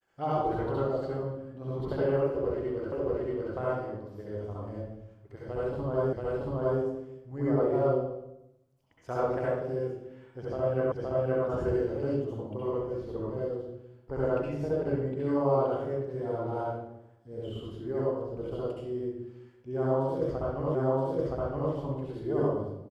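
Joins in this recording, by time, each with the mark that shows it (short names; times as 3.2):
2.92 repeat of the last 0.63 s
6.13 repeat of the last 0.68 s
10.92 repeat of the last 0.52 s
20.75 repeat of the last 0.97 s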